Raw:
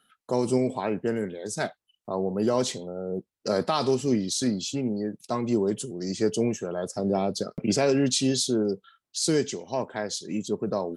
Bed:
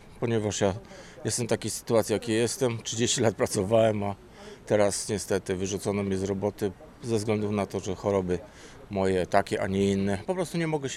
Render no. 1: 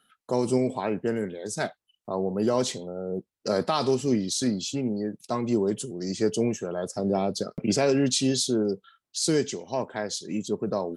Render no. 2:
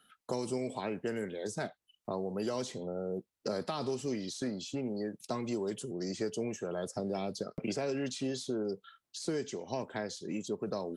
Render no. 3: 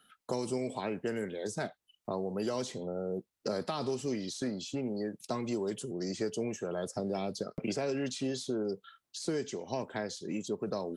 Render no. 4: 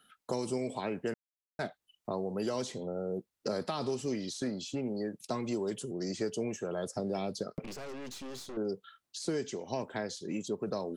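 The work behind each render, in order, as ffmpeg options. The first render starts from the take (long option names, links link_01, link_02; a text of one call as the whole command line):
ffmpeg -i in.wav -af anull out.wav
ffmpeg -i in.wav -filter_complex "[0:a]acrossover=split=450|1900[link_01][link_02][link_03];[link_01]acompressor=threshold=-38dB:ratio=4[link_04];[link_02]acompressor=threshold=-39dB:ratio=4[link_05];[link_03]acompressor=threshold=-46dB:ratio=4[link_06];[link_04][link_05][link_06]amix=inputs=3:normalize=0" out.wav
ffmpeg -i in.wav -af "volume=1dB" out.wav
ffmpeg -i in.wav -filter_complex "[0:a]asettb=1/sr,asplit=3[link_01][link_02][link_03];[link_01]atrim=end=7.644[link_04];[link_02]atrim=start=7.64:end=8.57,asetpts=PTS-STARTPTS,afade=type=in:duration=0.004:curve=qsin,afade=type=out:start_time=0.926:duration=0.004:curve=qsin,aeval=exprs='(tanh(112*val(0)+0.7)-tanh(0.7))/112':channel_layout=same[link_05];[link_03]atrim=start=8.566[link_06];[link_04][link_05]acrossfade=duration=0.004:curve1=hsin:curve2=qsin[link_07];[link_07][link_06]acrossfade=duration=0.004:curve1=qsin:curve2=hsin,asplit=3[link_08][link_09][link_10];[link_08]atrim=end=1.14,asetpts=PTS-STARTPTS,afade=type=out:start_time=1.136:duration=0.004:curve=hsin[link_11];[link_09]atrim=start=1.14:end=1.59,asetpts=PTS-STARTPTS,volume=0[link_12];[link_10]atrim=start=1.59,asetpts=PTS-STARTPTS,afade=type=in:duration=0.004:curve=hsin[link_13];[link_11][link_12][link_13]concat=n=3:v=0:a=1" out.wav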